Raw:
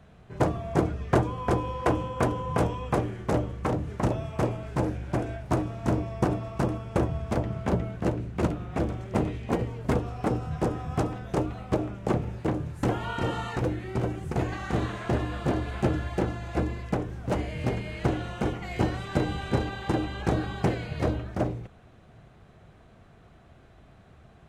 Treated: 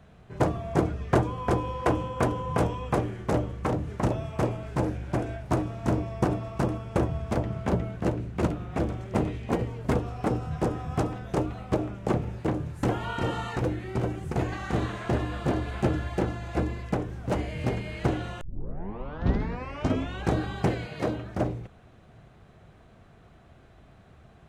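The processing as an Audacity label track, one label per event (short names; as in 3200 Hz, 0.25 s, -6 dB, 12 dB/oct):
18.410000	18.410000	tape start 1.86 s
20.860000	21.340000	HPF 240 Hz -> 77 Hz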